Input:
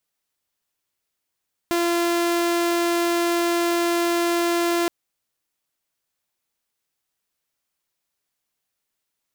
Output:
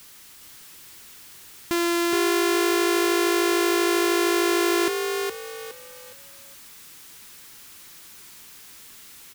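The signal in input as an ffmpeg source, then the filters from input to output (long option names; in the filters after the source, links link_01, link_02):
-f lavfi -i "aevalsrc='0.15*(2*mod(343*t,1)-1)':duration=3.17:sample_rate=44100"
-filter_complex "[0:a]aeval=exprs='val(0)+0.5*0.00891*sgn(val(0))':channel_layout=same,equalizer=frequency=620:width=1.8:gain=-9,asplit=5[link_01][link_02][link_03][link_04][link_05];[link_02]adelay=415,afreqshift=53,volume=-4dB[link_06];[link_03]adelay=830,afreqshift=106,volume=-14.2dB[link_07];[link_04]adelay=1245,afreqshift=159,volume=-24.3dB[link_08];[link_05]adelay=1660,afreqshift=212,volume=-34.5dB[link_09];[link_01][link_06][link_07][link_08][link_09]amix=inputs=5:normalize=0"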